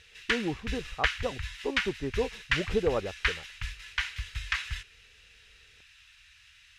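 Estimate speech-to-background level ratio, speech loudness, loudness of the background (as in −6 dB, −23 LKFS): −1.0 dB, −34.0 LKFS, −33.0 LKFS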